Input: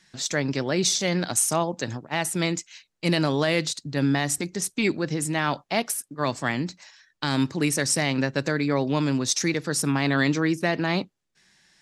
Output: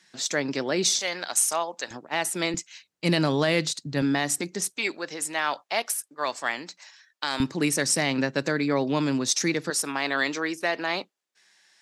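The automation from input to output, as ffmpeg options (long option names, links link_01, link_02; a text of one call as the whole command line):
ffmpeg -i in.wav -af "asetnsamples=nb_out_samples=441:pad=0,asendcmd='0.99 highpass f 670;1.91 highpass f 300;2.54 highpass f 93;4.02 highpass f 210;4.77 highpass f 570;7.4 highpass f 170;9.7 highpass f 480',highpass=240" out.wav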